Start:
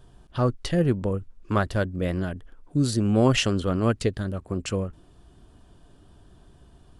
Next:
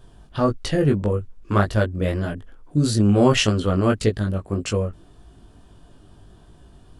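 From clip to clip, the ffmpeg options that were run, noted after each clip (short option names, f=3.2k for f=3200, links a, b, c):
-af "flanger=delay=18.5:depth=2.3:speed=1.7,volume=7dB"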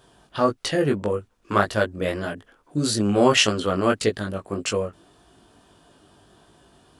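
-af "highpass=f=460:p=1,volume=3dB"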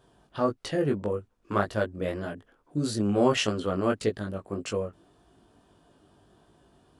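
-af "tiltshelf=f=1.2k:g=3.5,volume=-7.5dB"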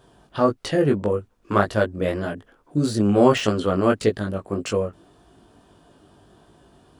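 -af "deesser=0.8,volume=7dB"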